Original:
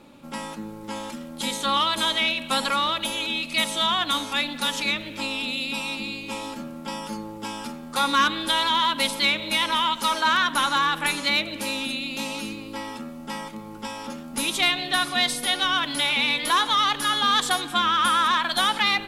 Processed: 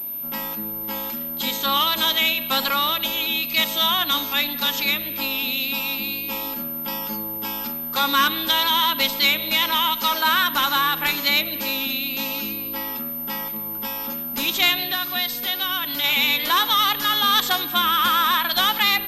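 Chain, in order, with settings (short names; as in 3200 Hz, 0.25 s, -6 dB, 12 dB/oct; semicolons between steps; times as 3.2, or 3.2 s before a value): high shelf 3200 Hz +8 dB; 14.83–16.04 compressor 2:1, threshold -25 dBFS, peak gain reduction 6.5 dB; pulse-width modulation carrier 13000 Hz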